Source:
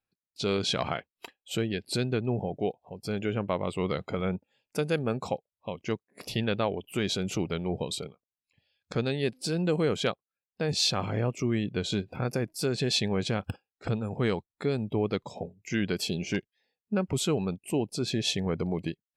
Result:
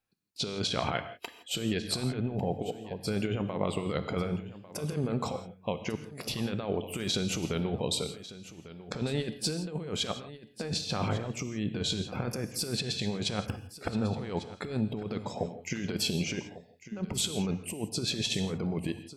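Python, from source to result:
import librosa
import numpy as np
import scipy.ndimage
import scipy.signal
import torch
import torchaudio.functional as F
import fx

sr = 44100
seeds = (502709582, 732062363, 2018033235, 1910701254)

y = fx.over_compress(x, sr, threshold_db=-31.0, ratio=-0.5)
y = y + 10.0 ** (-15.5 / 20.0) * np.pad(y, (int(1148 * sr / 1000.0), 0))[:len(y)]
y = fx.rev_gated(y, sr, seeds[0], gate_ms=190, shape='flat', drr_db=9.5)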